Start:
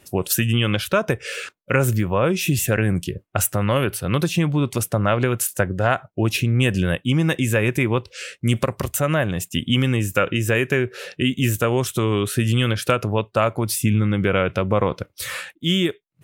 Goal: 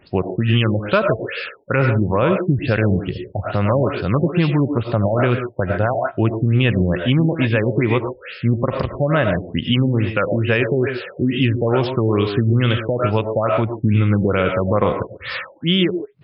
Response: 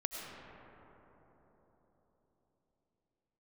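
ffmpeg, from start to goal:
-filter_complex "[1:a]atrim=start_sample=2205,atrim=end_sample=6615[s0];[0:a][s0]afir=irnorm=-1:irlink=0,alimiter=level_in=2.82:limit=0.891:release=50:level=0:latency=1,afftfilt=real='re*lt(b*sr/1024,870*pow(5400/870,0.5+0.5*sin(2*PI*2.3*pts/sr)))':imag='im*lt(b*sr/1024,870*pow(5400/870,0.5+0.5*sin(2*PI*2.3*pts/sr)))':win_size=1024:overlap=0.75,volume=0.596"

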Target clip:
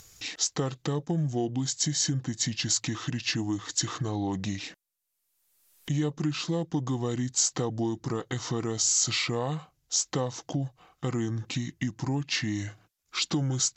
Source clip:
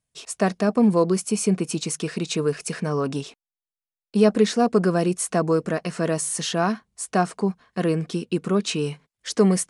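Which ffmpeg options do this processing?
-af "acompressor=mode=upward:threshold=0.01:ratio=2.5,asetrate=31046,aresample=44100,acompressor=threshold=0.0355:ratio=3,aemphasis=mode=production:type=50kf"

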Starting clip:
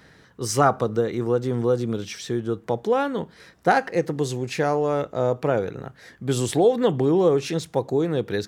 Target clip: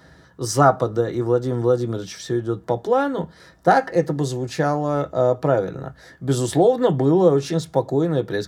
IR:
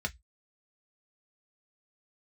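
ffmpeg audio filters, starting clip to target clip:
-filter_complex "[0:a]asplit=2[s0][s1];[1:a]atrim=start_sample=2205,lowpass=4000[s2];[s1][s2]afir=irnorm=-1:irlink=0,volume=0.531[s3];[s0][s3]amix=inputs=2:normalize=0"

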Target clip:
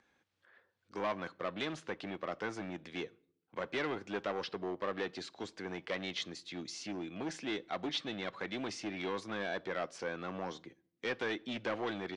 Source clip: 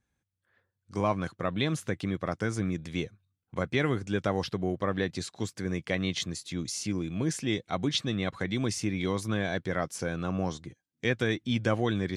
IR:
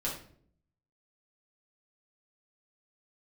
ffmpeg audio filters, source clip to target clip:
-filter_complex "[0:a]volume=21.1,asoftclip=hard,volume=0.0473,acompressor=mode=upward:threshold=0.00251:ratio=2.5,acrossover=split=260 5100:gain=0.1 1 0.0891[s0][s1][s2];[s0][s1][s2]amix=inputs=3:normalize=0,asplit=2[s3][s4];[1:a]atrim=start_sample=2205,adelay=10[s5];[s4][s5]afir=irnorm=-1:irlink=0,volume=0.0631[s6];[s3][s6]amix=inputs=2:normalize=0,aresample=22050,aresample=44100,volume=0.75"

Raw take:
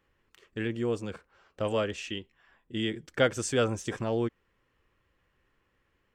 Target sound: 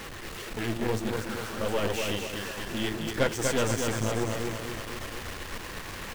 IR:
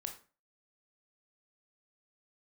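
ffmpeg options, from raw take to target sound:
-af "aeval=exprs='val(0)+0.5*0.0316*sgn(val(0))':c=same,flanger=delay=3.7:depth=9.4:regen=44:speed=1.8:shape=triangular,aecho=1:1:242|484|726|968|1210|1452|1694:0.631|0.347|0.191|0.105|0.0577|0.0318|0.0175,aeval=exprs='0.251*(cos(1*acos(clip(val(0)/0.251,-1,1)))-cos(1*PI/2))+0.0282*(cos(8*acos(clip(val(0)/0.251,-1,1)))-cos(8*PI/2))':c=same"

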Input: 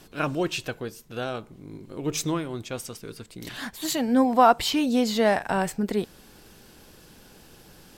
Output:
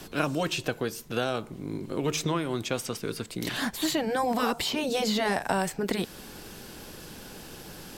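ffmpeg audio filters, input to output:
-filter_complex "[0:a]afftfilt=real='re*lt(hypot(re,im),0.562)':imag='im*lt(hypot(re,im),0.562)':win_size=1024:overlap=0.75,acrossover=split=120|1000|4200[s0][s1][s2][s3];[s0]acompressor=threshold=0.00141:ratio=4[s4];[s1]acompressor=threshold=0.02:ratio=4[s5];[s2]acompressor=threshold=0.00891:ratio=4[s6];[s3]acompressor=threshold=0.00562:ratio=4[s7];[s4][s5][s6][s7]amix=inputs=4:normalize=0,volume=2.37"

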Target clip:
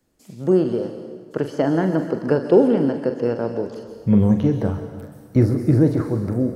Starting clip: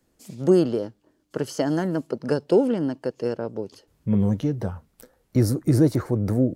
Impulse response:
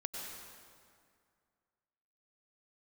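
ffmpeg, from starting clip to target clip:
-filter_complex "[0:a]dynaudnorm=f=220:g=9:m=2.37,asplit=2[s0][s1];[1:a]atrim=start_sample=2205,asetrate=52920,aresample=44100,adelay=43[s2];[s1][s2]afir=irnorm=-1:irlink=0,volume=0.531[s3];[s0][s3]amix=inputs=2:normalize=0,acrossover=split=2900[s4][s5];[s5]acompressor=threshold=0.00316:ratio=4:attack=1:release=60[s6];[s4][s6]amix=inputs=2:normalize=0,volume=0.891"

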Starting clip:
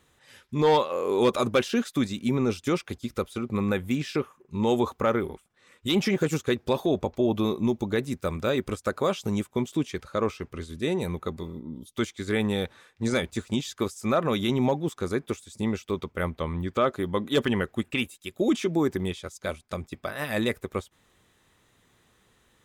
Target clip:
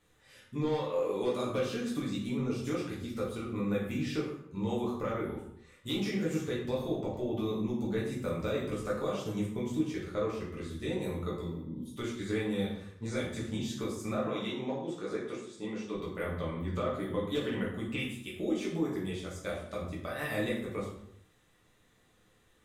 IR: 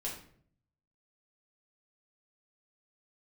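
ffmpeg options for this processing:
-filter_complex "[0:a]acompressor=threshold=0.0501:ratio=6,asettb=1/sr,asplit=3[s0][s1][s2];[s0]atrim=end=14.154[s3];[s1]atrim=start=14.15:end=15.95,asetpts=PTS-STARTPTS,afade=t=in:d=0.004:c=qsin,afade=t=out:st=1.796:d=0.004:c=qsin,highpass=250,lowpass=6800[s4];[s2]atrim=start=15.946[s5];[s3][s4]acrossfade=d=0.004:c1=hsin:c2=qsin[s6];[s6][s5]acrossfade=d=0.004:c1=qsin:c2=hsin[s7];[1:a]atrim=start_sample=2205,afade=t=out:st=0.37:d=0.01,atrim=end_sample=16758,asetrate=31752,aresample=44100[s8];[s7][s8]afir=irnorm=-1:irlink=0,volume=0.447"

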